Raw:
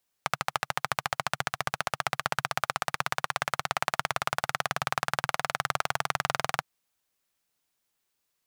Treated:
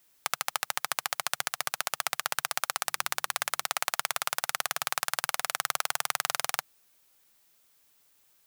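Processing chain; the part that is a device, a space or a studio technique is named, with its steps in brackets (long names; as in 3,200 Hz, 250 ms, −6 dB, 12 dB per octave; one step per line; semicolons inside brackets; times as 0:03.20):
turntable without a phono preamp (RIAA equalisation recording; white noise bed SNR 35 dB)
0:02.77–0:03.64: mains-hum notches 50/100/150/200/250/300/350 Hz
level −4 dB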